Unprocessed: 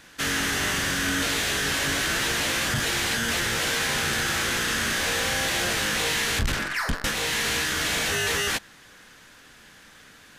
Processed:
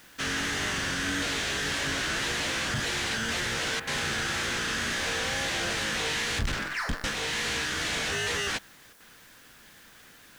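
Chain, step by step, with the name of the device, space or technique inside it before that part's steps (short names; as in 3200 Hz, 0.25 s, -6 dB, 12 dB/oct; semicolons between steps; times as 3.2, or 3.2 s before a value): worn cassette (LPF 7900 Hz 12 dB/oct; wow and flutter; level dips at 3.8/8.93, 71 ms -7 dB; white noise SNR 27 dB); gain -4 dB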